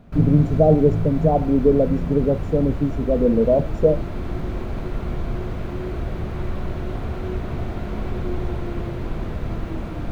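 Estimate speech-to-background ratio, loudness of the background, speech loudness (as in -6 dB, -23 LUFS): 10.5 dB, -29.5 LUFS, -19.0 LUFS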